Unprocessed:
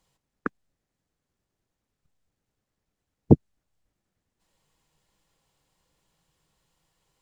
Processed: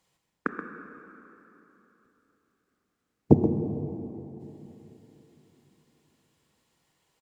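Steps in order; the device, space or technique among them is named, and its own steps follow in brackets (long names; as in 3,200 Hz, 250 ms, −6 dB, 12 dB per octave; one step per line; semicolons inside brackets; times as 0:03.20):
PA in a hall (high-pass filter 130 Hz 6 dB per octave; parametric band 2,100 Hz +3 dB 0.56 octaves; single-tap delay 129 ms −8.5 dB; convolution reverb RT60 3.5 s, pre-delay 21 ms, DRR 5.5 dB)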